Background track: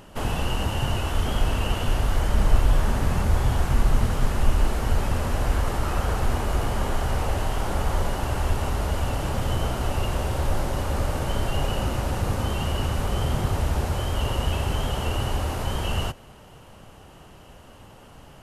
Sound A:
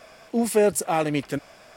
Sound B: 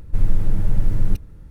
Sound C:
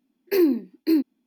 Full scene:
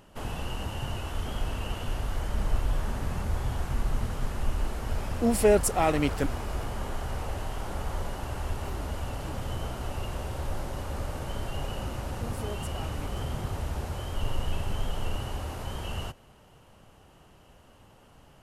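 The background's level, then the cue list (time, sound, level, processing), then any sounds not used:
background track −8.5 dB
0:04.88: mix in A −1.5 dB
0:08.34: mix in C −14 dB + downward compressor 4 to 1, threshold −34 dBFS
0:11.87: mix in A −14 dB + downward compressor 1.5 to 1, threshold −36 dBFS
0:14.02: mix in B −16 dB

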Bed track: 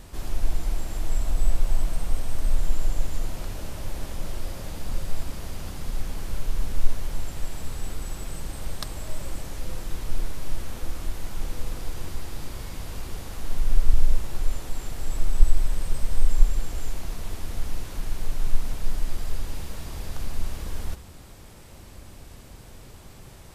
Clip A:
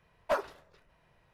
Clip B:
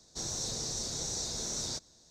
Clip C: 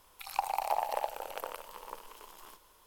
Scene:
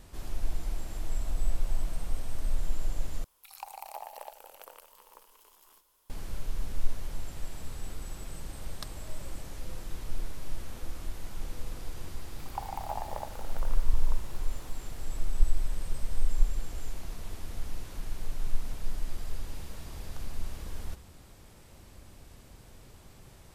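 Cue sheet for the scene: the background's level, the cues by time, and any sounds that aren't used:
bed track −7 dB
0:03.24: overwrite with C −11.5 dB + high-shelf EQ 5,000 Hz +9.5 dB
0:12.19: mix in C −5.5 dB + flat-topped bell 5,300 Hz −13.5 dB 2.5 octaves
not used: A, B

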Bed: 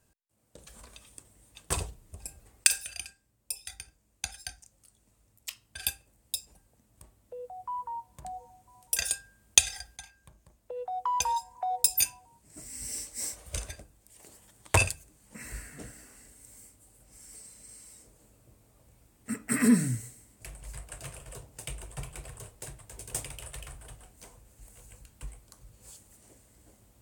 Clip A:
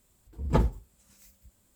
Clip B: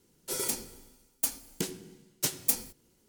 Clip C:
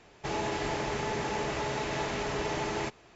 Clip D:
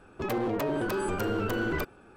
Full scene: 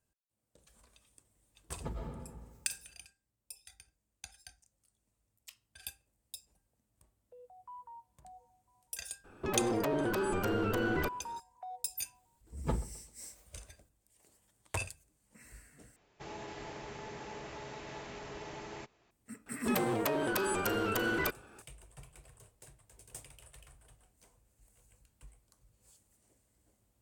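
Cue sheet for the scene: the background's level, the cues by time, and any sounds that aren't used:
bed −13.5 dB
0:01.31: mix in A −17.5 dB + comb and all-pass reverb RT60 1.6 s, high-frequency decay 0.65×, pre-delay 70 ms, DRR −1 dB
0:09.24: mix in D −2.5 dB
0:12.14: mix in A −10 dB + feedback echo with a low-pass in the loop 130 ms, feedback 37%, level −17.5 dB
0:15.96: overwrite with C −13 dB
0:19.46: mix in D −1 dB + spectral tilt +2 dB per octave
not used: B

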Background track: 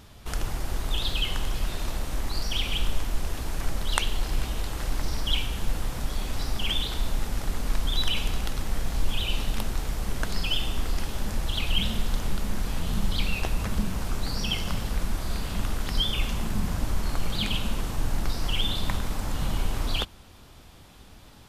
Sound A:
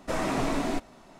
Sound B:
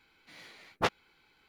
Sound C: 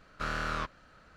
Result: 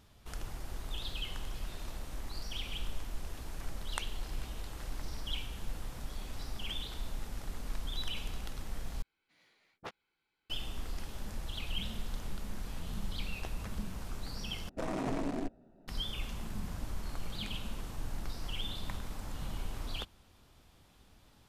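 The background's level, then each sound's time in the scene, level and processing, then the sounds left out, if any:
background track −12 dB
0:09.02: overwrite with B −17 dB
0:14.69: overwrite with A −5.5 dB + adaptive Wiener filter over 41 samples
not used: C

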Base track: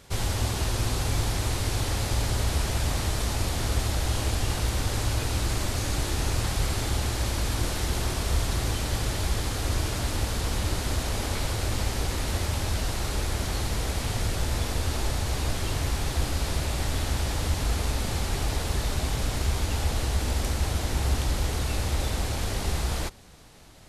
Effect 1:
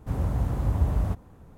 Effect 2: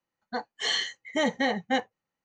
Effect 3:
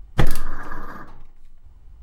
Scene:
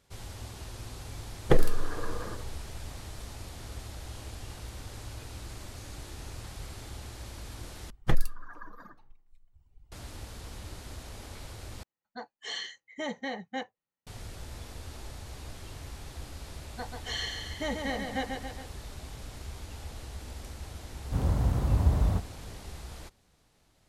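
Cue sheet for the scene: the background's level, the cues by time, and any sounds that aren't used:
base track −15.5 dB
0:01.32: mix in 3 −7 dB + parametric band 450 Hz +14.5 dB 0.85 octaves
0:07.90: overwrite with 3 −8.5 dB + reverb reduction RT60 1.7 s
0:11.83: overwrite with 2 −9.5 dB
0:16.45: mix in 2 −8 dB + repeating echo 138 ms, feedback 56%, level −5 dB
0:21.05: mix in 1 −0.5 dB

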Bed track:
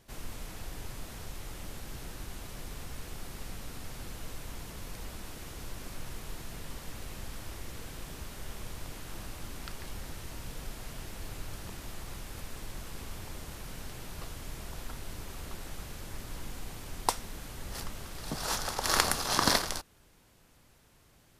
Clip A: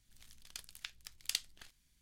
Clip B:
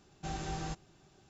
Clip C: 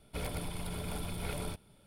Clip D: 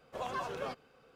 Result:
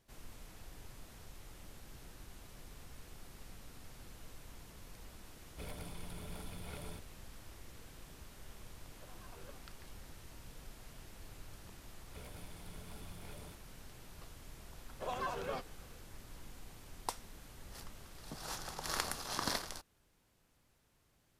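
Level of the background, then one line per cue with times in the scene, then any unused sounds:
bed track −11 dB
0:05.44: mix in C −9.5 dB
0:08.87: mix in D −16.5 dB + square-wave tremolo 2.2 Hz, depth 60%, duty 40%
0:12.00: mix in C −17.5 dB + leveller curve on the samples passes 1
0:14.87: mix in D −1.5 dB
0:18.18: mix in B −15.5 dB
not used: A

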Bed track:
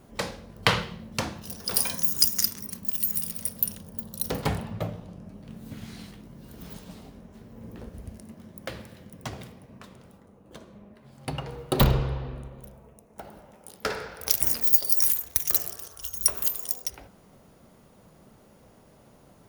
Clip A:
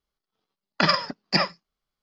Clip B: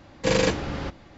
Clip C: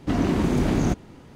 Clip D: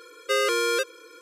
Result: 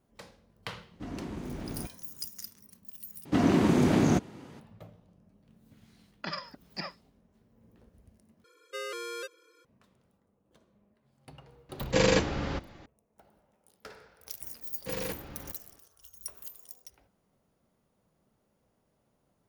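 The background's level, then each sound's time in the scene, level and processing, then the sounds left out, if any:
bed track −18.5 dB
0:00.93: mix in C −17 dB
0:03.25: overwrite with C −0.5 dB + high-pass filter 120 Hz
0:05.44: mix in A −16.5 dB
0:08.44: overwrite with D −14.5 dB
0:11.69: mix in B −2 dB
0:14.62: mix in B −15 dB + highs frequency-modulated by the lows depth 0.17 ms

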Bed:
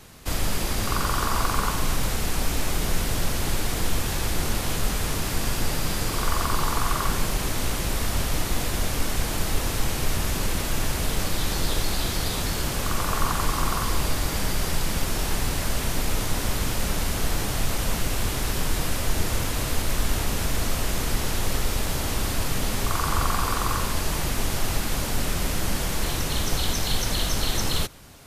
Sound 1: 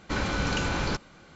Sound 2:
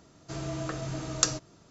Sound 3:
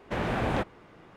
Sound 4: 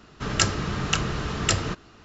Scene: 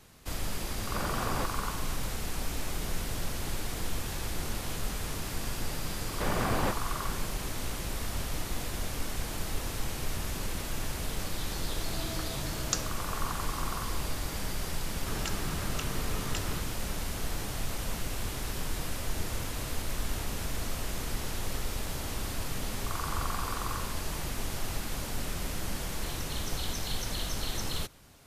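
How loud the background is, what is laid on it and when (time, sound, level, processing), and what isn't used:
bed −9 dB
0:00.83: mix in 3 −7.5 dB
0:06.09: mix in 3 −2.5 dB
0:11.50: mix in 2 −6.5 dB
0:14.86: mix in 4 −3.5 dB + downward compressor 2.5 to 1, threshold −34 dBFS
not used: 1

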